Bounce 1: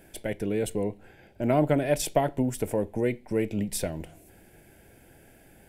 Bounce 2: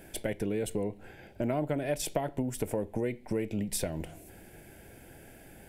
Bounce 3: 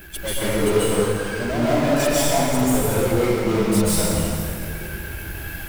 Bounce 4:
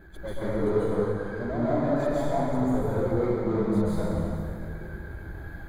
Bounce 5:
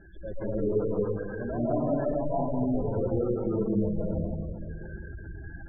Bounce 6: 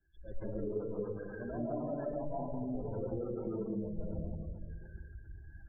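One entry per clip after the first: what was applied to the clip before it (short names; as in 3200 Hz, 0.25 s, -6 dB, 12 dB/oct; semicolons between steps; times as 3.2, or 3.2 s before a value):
compressor 4:1, threshold -32 dBFS, peak gain reduction 12.5 dB; gain +3 dB
per-bin expansion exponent 2; power-law curve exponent 0.35; plate-style reverb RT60 2.4 s, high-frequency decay 0.8×, pre-delay 0.12 s, DRR -9.5 dB; gain -1.5 dB
running mean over 16 samples; gain -5.5 dB
spectral gate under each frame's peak -20 dB strong; gain -2 dB
de-hum 91.46 Hz, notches 34; compressor, threshold -29 dBFS, peak gain reduction 8 dB; three-band expander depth 100%; gain -4.5 dB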